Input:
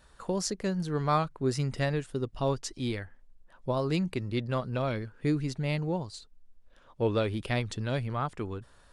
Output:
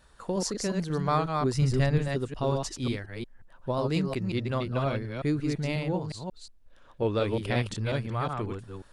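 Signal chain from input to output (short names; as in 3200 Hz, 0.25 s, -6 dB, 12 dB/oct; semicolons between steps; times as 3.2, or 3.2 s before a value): reverse delay 0.18 s, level -3.5 dB; 1.54–2.08 low shelf 130 Hz +11 dB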